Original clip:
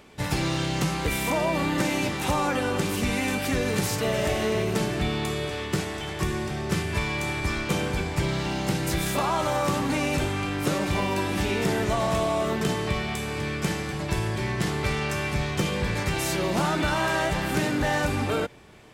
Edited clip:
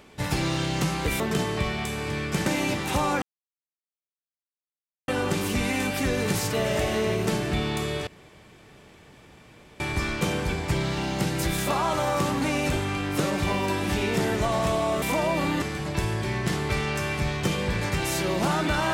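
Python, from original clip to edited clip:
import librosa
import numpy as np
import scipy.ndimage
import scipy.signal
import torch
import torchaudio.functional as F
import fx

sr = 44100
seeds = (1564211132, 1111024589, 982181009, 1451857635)

y = fx.edit(x, sr, fx.swap(start_s=1.2, length_s=0.6, other_s=12.5, other_length_s=1.26),
    fx.insert_silence(at_s=2.56, length_s=1.86),
    fx.room_tone_fill(start_s=5.55, length_s=1.73), tone=tone)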